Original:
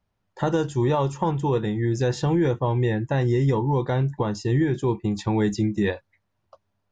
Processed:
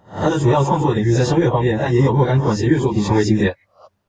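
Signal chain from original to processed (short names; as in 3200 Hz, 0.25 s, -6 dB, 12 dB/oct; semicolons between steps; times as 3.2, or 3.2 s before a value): spectral swells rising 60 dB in 0.57 s; plain phase-vocoder stretch 0.59×; gain +9 dB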